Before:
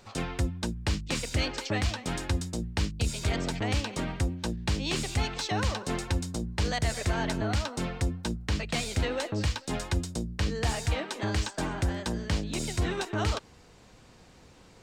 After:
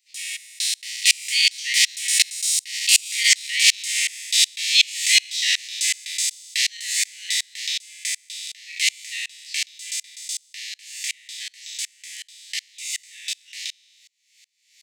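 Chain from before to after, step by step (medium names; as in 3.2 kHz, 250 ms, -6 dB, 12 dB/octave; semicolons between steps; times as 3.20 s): spectral sustain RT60 0.77 s; Doppler pass-by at 3.44 s, 16 m/s, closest 15 m; steep high-pass 1.9 kHz 96 dB/octave; treble shelf 5.7 kHz +8 dB; loudness maximiser +27.5 dB; sawtooth tremolo in dB swelling 2.7 Hz, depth 31 dB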